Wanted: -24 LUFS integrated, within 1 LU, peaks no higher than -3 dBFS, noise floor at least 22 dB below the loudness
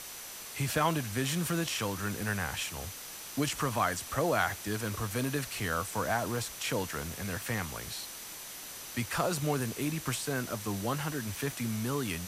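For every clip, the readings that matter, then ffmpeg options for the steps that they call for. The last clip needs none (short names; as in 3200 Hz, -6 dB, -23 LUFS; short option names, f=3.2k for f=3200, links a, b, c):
steady tone 6000 Hz; tone level -52 dBFS; noise floor -44 dBFS; noise floor target -55 dBFS; loudness -33.0 LUFS; peak -14.0 dBFS; loudness target -24.0 LUFS
-> -af "bandreject=f=6k:w=30"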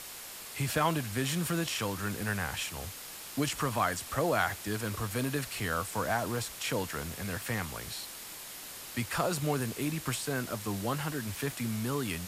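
steady tone none; noise floor -45 dBFS; noise floor target -55 dBFS
-> -af "afftdn=nr=10:nf=-45"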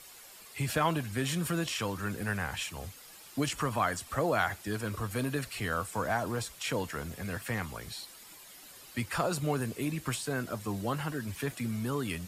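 noise floor -52 dBFS; noise floor target -56 dBFS
-> -af "afftdn=nr=6:nf=-52"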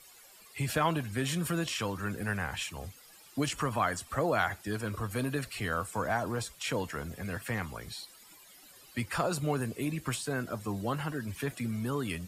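noise floor -56 dBFS; loudness -33.5 LUFS; peak -14.5 dBFS; loudness target -24.0 LUFS
-> -af "volume=9.5dB"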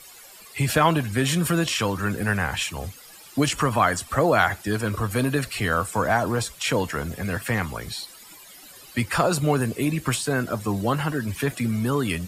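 loudness -24.0 LUFS; peak -5.0 dBFS; noise floor -46 dBFS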